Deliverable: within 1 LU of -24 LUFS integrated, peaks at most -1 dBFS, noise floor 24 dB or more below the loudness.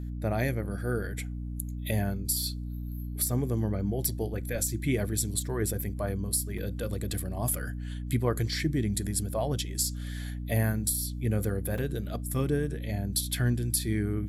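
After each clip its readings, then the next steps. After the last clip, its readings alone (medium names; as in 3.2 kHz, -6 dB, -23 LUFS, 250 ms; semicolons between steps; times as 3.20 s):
dropouts 2; longest dropout 3.8 ms; hum 60 Hz; highest harmonic 300 Hz; hum level -33 dBFS; loudness -30.5 LUFS; peak level -13.0 dBFS; loudness target -24.0 LUFS
-> interpolate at 6.58/11.78 s, 3.8 ms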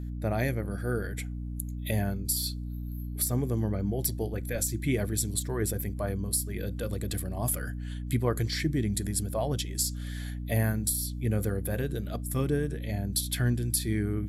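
dropouts 0; hum 60 Hz; highest harmonic 300 Hz; hum level -33 dBFS
-> de-hum 60 Hz, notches 5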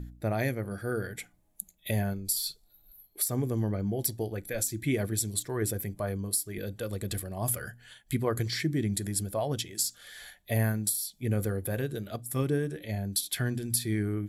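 hum not found; loudness -31.0 LUFS; peak level -13.0 dBFS; loudness target -24.0 LUFS
-> trim +7 dB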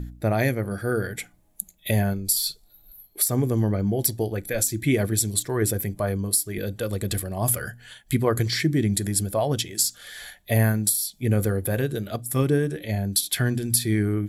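loudness -24.0 LUFS; peak level -6.0 dBFS; noise floor -57 dBFS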